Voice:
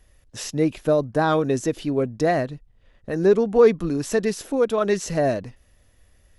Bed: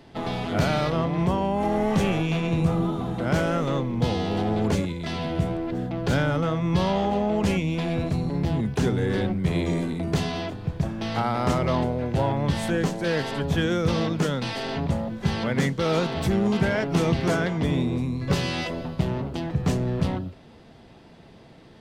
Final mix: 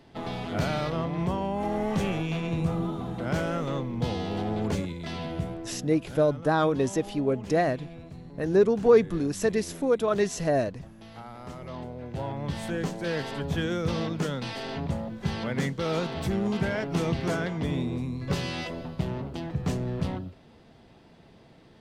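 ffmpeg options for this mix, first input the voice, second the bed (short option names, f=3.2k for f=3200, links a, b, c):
-filter_complex "[0:a]adelay=5300,volume=-3.5dB[a];[1:a]volume=8dB,afade=t=out:st=5.2:d=0.87:silence=0.223872,afade=t=in:st=11.56:d=1.46:silence=0.223872[b];[a][b]amix=inputs=2:normalize=0"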